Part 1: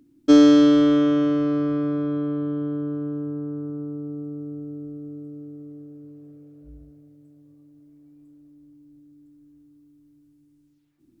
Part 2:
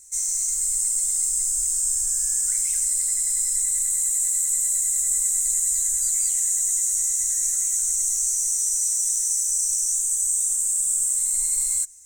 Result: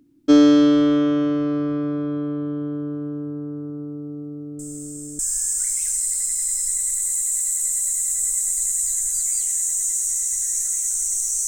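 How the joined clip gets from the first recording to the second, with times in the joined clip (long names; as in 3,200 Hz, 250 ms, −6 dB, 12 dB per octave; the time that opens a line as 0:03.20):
part 1
0:04.59: mix in part 2 from 0:01.47 0.60 s −15 dB
0:05.19: continue with part 2 from 0:02.07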